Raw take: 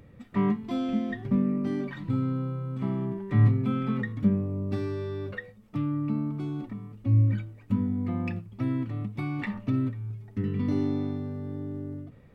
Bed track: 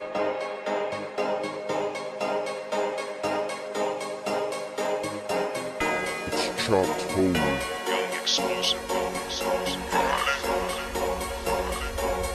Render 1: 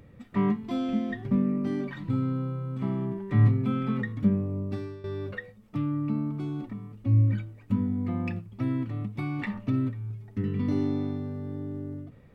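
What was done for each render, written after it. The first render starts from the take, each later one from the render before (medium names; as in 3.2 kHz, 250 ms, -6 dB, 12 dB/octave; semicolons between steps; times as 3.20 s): 4.58–5.04 s: fade out, to -14 dB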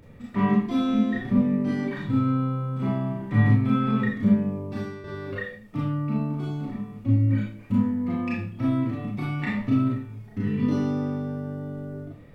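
Schroeder reverb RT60 0.43 s, combs from 26 ms, DRR -5 dB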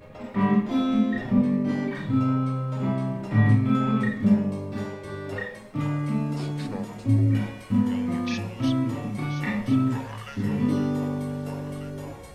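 add bed track -15.5 dB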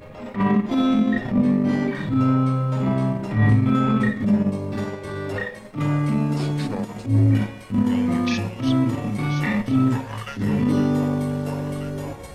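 in parallel at +1.5 dB: peak limiter -17.5 dBFS, peak gain reduction 9 dB; on the sum: transient shaper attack -10 dB, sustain -6 dB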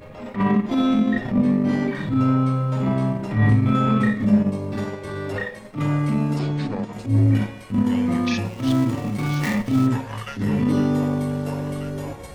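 3.62–4.41 s: doubling 29 ms -6.5 dB; 6.39–6.93 s: distance through air 92 m; 8.45–9.87 s: dead-time distortion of 0.11 ms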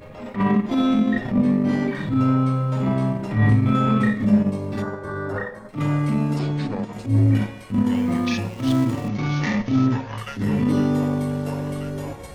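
4.82–5.69 s: resonant high shelf 1.9 kHz -8.5 dB, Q 3; 7.93–8.48 s: companding laws mixed up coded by A; 9.08–10.18 s: steep low-pass 6.5 kHz 72 dB/octave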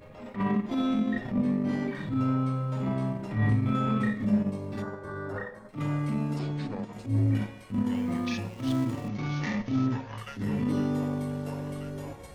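trim -8 dB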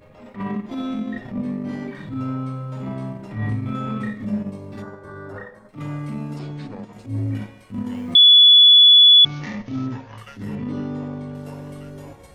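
8.15–9.25 s: bleep 3.42 kHz -6.5 dBFS; 10.55–11.35 s: distance through air 110 m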